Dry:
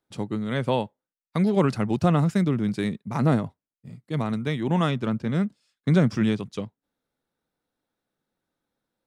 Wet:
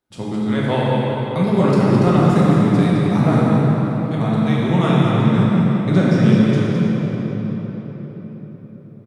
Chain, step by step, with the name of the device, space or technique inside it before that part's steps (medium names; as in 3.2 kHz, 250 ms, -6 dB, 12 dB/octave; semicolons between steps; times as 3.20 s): cave (delay 213 ms -8.5 dB; reverberation RT60 4.9 s, pre-delay 4 ms, DRR -6.5 dB)